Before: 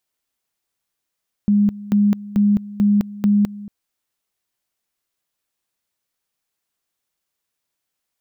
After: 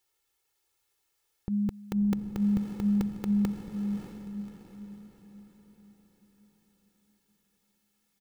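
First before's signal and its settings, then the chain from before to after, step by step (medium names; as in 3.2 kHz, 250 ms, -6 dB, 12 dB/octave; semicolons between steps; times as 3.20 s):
two-level tone 205 Hz -11.5 dBFS, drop 18.5 dB, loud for 0.21 s, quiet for 0.23 s, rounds 5
comb 2.3 ms, depth 84%; peak limiter -21 dBFS; echo that smears into a reverb 594 ms, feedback 47%, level -5 dB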